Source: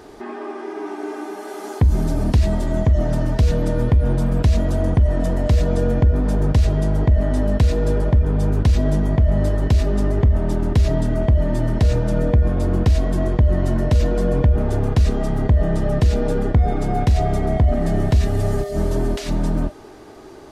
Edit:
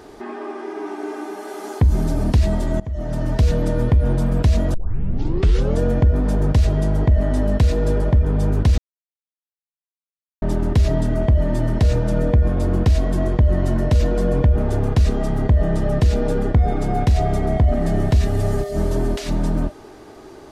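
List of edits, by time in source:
2.8–3.36 fade in, from -20.5 dB
4.74 tape start 1.06 s
8.78–10.42 mute

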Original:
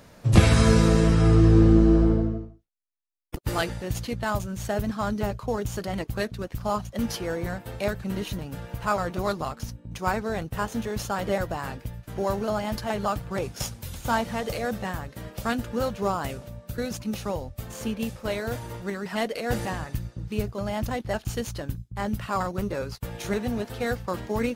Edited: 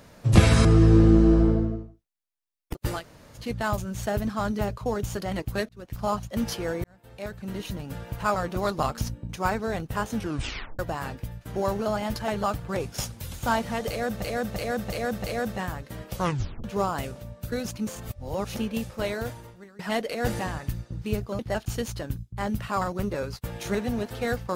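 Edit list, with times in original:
0.65–1.27 cut
3.58–4.03 room tone, crossfade 0.16 s
6.31–6.65 fade in
7.46–8.54 fade in
9.41–9.89 gain +5 dB
10.77 tape stop 0.64 s
14.5–14.84 loop, 5 plays
15.39 tape stop 0.51 s
17.13–17.83 reverse
18.44–19.05 fade out quadratic, to -19.5 dB
20.65–20.98 cut

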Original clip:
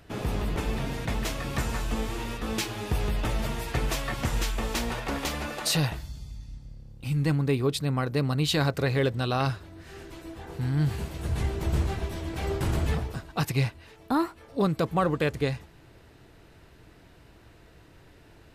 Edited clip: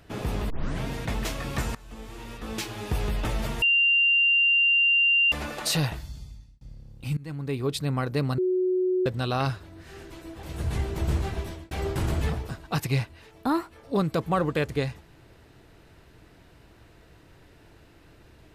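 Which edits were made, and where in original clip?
0.5 tape start 0.33 s
1.75–2.97 fade in, from -22 dB
3.62–5.32 bleep 2780 Hz -17.5 dBFS
6.2–6.61 fade out
7.17–7.81 fade in, from -22 dB
8.38–9.06 bleep 368 Hz -21 dBFS
10.43–11.08 cut
12.1–12.36 fade out

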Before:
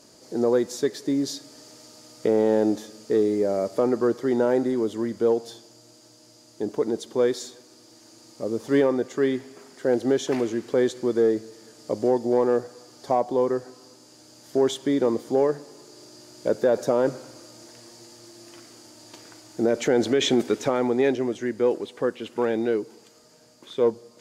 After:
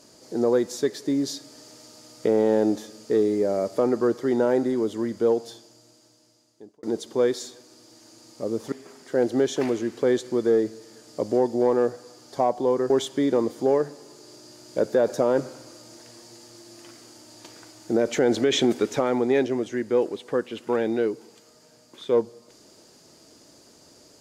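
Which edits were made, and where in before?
5.41–6.83 fade out
8.72–9.43 cut
13.61–14.59 cut

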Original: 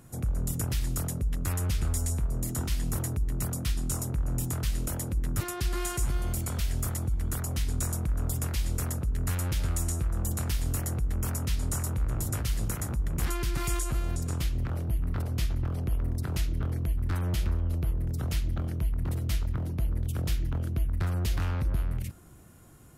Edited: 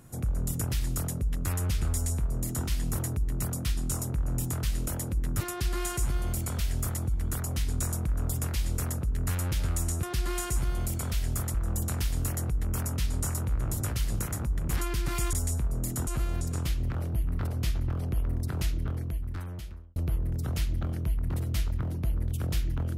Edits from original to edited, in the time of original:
1.92–2.66 copy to 13.82
5.5–7.01 copy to 10.03
16.45–17.71 fade out

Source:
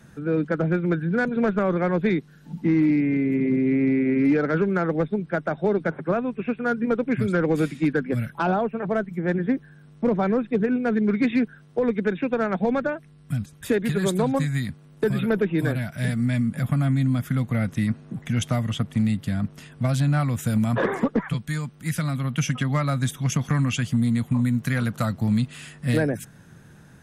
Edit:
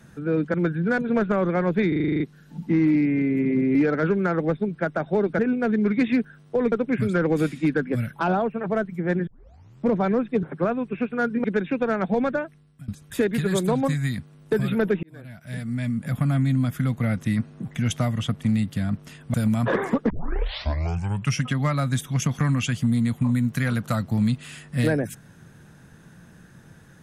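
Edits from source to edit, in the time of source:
0.54–0.81 cut
2.15 stutter 0.04 s, 9 plays
3.7–4.26 cut
5.9–6.91 swap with 10.62–11.95
9.46 tape start 0.58 s
12.9–13.39 fade out, to -23 dB
15.54–16.79 fade in
19.85–20.44 cut
21.2 tape start 1.33 s

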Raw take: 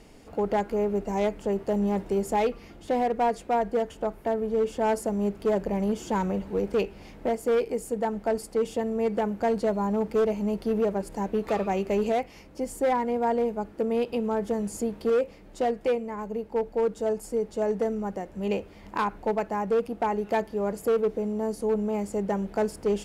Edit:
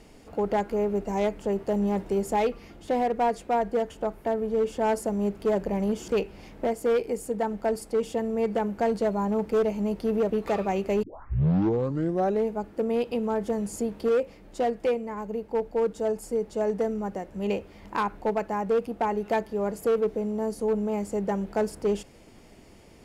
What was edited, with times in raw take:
6.08–6.7 cut
10.92–11.31 cut
12.04 tape start 1.49 s

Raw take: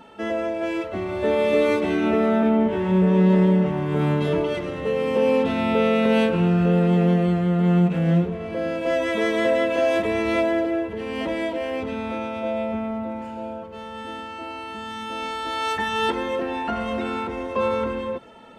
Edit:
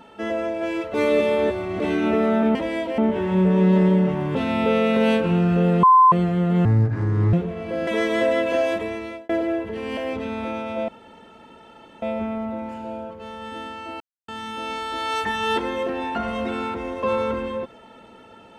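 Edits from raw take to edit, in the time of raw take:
0.94–1.8 reverse
3.92–5.44 cut
6.92–7.21 bleep 1030 Hz -9 dBFS
7.74–8.17 speed 63%
8.71–9.11 cut
9.78–10.53 fade out
11.21–11.64 move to 2.55
12.55 insert room tone 1.14 s
14.53–14.81 mute

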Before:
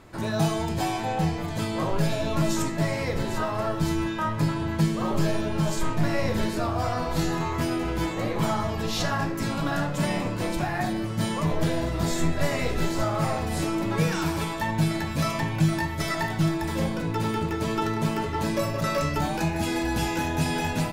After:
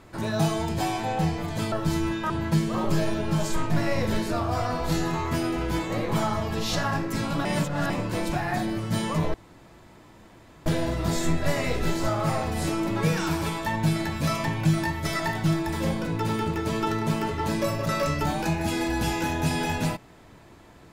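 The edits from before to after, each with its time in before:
1.72–3.67 cut
4.25–4.57 cut
9.72–10.17 reverse
11.61 insert room tone 1.32 s

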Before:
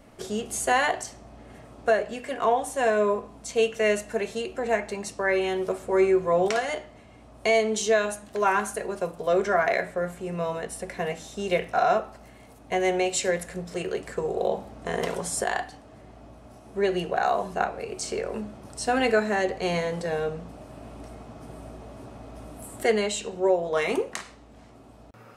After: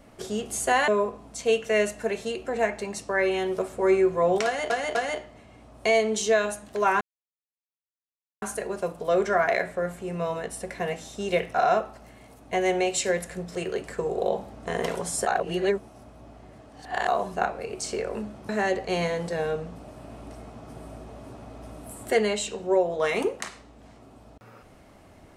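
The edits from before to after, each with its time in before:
0.88–2.98 cut
6.55–6.8 loop, 3 plays
8.61 insert silence 1.41 s
15.46–17.27 reverse
18.68–19.22 cut

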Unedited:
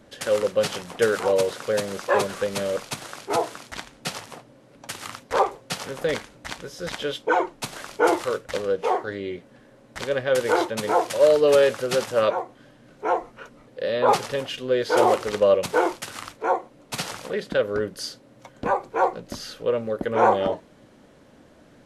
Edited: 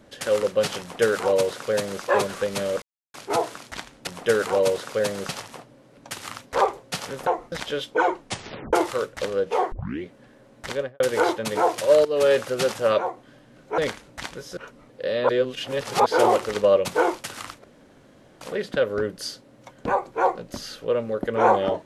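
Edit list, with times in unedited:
0.8–2.02 copy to 4.07
2.82–3.14 mute
6.05–6.84 swap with 13.1–13.35
7.56 tape stop 0.49 s
9.04 tape start 0.30 s
10.04–10.32 studio fade out
11.37–11.66 fade in, from -12.5 dB
14.07–14.84 reverse
16.42–17.19 room tone

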